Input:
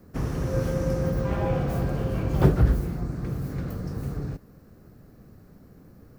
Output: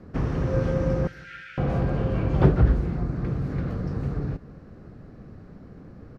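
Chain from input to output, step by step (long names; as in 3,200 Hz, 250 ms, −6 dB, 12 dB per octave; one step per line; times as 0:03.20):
low-pass filter 3,500 Hz 12 dB per octave
in parallel at 0 dB: downward compressor, threshold −35 dBFS, peak gain reduction 21 dB
0:01.07–0:01.58: on the sum: linear-phase brick-wall high-pass 1,300 Hz
repeating echo 172 ms, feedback 40%, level −22.5 dB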